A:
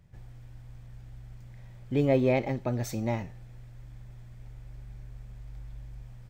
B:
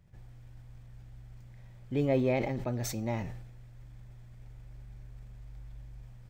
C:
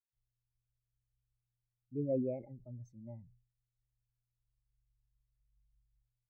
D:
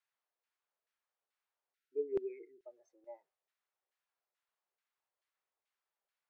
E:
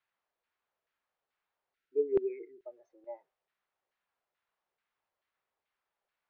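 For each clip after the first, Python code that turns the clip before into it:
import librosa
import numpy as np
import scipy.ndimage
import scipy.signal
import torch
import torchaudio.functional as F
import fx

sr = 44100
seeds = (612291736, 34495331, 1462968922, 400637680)

y1 = fx.sustainer(x, sr, db_per_s=48.0)
y1 = y1 * 10.0 ** (-4.0 / 20.0)
y2 = fx.spectral_expand(y1, sr, expansion=2.5)
y2 = y2 * 10.0 ** (-6.5 / 20.0)
y3 = fx.spec_erase(y2, sr, start_s=1.75, length_s=0.9, low_hz=490.0, high_hz=1300.0)
y3 = scipy.signal.sosfilt(scipy.signal.ellip(4, 1.0, 40, 360.0, 'highpass', fs=sr, output='sos'), y3)
y3 = fx.filter_lfo_bandpass(y3, sr, shape='saw_down', hz=2.3, low_hz=550.0, high_hz=1900.0, q=0.96)
y3 = y3 * 10.0 ** (13.0 / 20.0)
y4 = fx.air_absorb(y3, sr, metres=230.0)
y4 = y4 * 10.0 ** (7.5 / 20.0)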